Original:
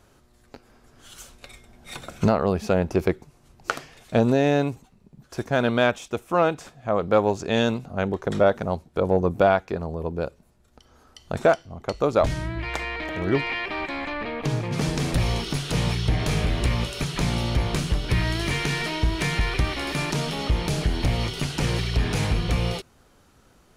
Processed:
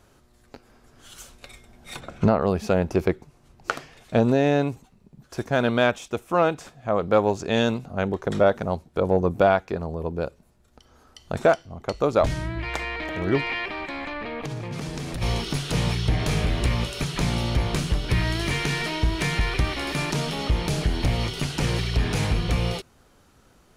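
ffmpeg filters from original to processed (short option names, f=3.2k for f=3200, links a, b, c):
-filter_complex "[0:a]asplit=3[a][b][c];[a]afade=t=out:st=1.99:d=0.02[d];[b]aemphasis=mode=reproduction:type=75fm,afade=t=in:st=1.99:d=0.02,afade=t=out:st=2.4:d=0.02[e];[c]afade=t=in:st=2.4:d=0.02[f];[d][e][f]amix=inputs=3:normalize=0,asettb=1/sr,asplit=3[g][h][i];[g]atrim=end=3.024[j];[h]atrim=start=3.02:end=4.7,asetpts=PTS-STARTPTS,afade=t=in:d=0.004:c=qsin,afade=t=out:st=1.676:d=0.004:c=qsin,highshelf=f=5.4k:g=-4.5[k];[i]atrim=start=4.696[l];[j][k]acrossfade=d=0.004:c1=hsin:c2=qsin[m];[m][l]acrossfade=d=0.004:c1=qsin:c2=hsin,asplit=3[n][o][p];[n]afade=t=out:st=13.67:d=0.02[q];[o]acompressor=threshold=-28dB:ratio=6:attack=3.2:release=140:knee=1:detection=peak,afade=t=in:st=13.67:d=0.02,afade=t=out:st=15.21:d=0.02[r];[p]afade=t=in:st=15.21:d=0.02[s];[q][r][s]amix=inputs=3:normalize=0"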